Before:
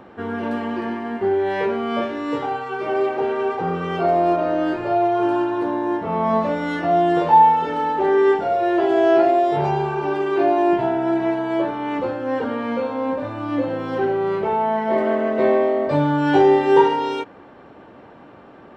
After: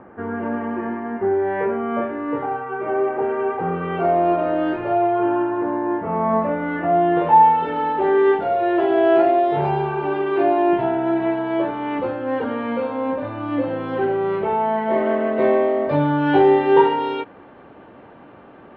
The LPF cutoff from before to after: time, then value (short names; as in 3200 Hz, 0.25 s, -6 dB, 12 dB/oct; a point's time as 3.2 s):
LPF 24 dB/oct
3.08 s 2000 Hz
4.64 s 3400 Hz
5.52 s 2200 Hz
6.74 s 2200 Hz
7.72 s 3500 Hz